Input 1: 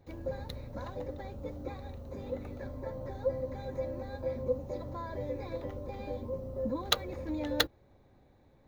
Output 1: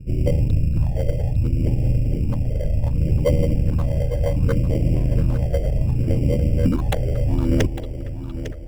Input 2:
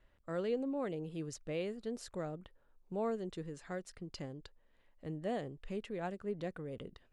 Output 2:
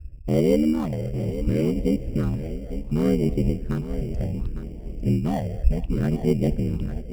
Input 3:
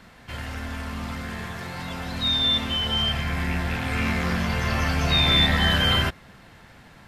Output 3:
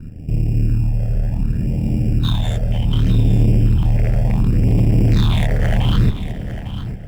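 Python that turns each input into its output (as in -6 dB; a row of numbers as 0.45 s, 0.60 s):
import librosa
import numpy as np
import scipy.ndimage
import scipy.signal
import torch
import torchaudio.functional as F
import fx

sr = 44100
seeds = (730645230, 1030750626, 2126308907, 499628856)

p1 = fx.wiener(x, sr, points=41)
p2 = fx.tilt_eq(p1, sr, slope=-3.0)
p3 = p2 * np.sin(2.0 * np.pi * 39.0 * np.arange(len(p2)) / sr)
p4 = fx.tube_stage(p3, sr, drive_db=25.0, bias=0.25)
p5 = fx.echo_wet_lowpass(p4, sr, ms=230, feedback_pct=81, hz=2600.0, wet_db=-19.0)
p6 = fx.phaser_stages(p5, sr, stages=6, low_hz=270.0, high_hz=1600.0, hz=0.67, feedback_pct=25)
p7 = p6 + 10.0 ** (-12.0 / 20.0) * np.pad(p6, (int(853 * sr / 1000.0), 0))[:len(p6)]
p8 = fx.sample_hold(p7, sr, seeds[0], rate_hz=2600.0, jitter_pct=0)
p9 = p7 + F.gain(torch.from_numpy(p8), -9.0).numpy()
y = librosa.util.normalize(p9) * 10.0 ** (-6 / 20.0)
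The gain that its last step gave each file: +15.0 dB, +15.5 dB, +11.0 dB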